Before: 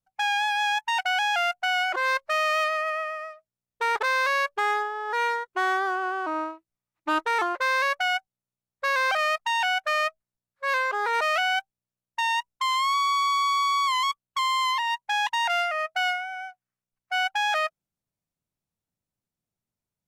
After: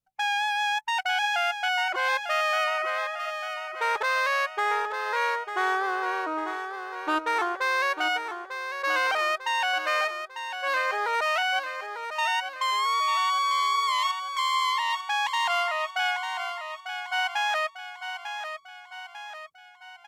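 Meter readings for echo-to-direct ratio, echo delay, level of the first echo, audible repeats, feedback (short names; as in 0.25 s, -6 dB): -7.0 dB, 0.897 s, -8.5 dB, 5, 52%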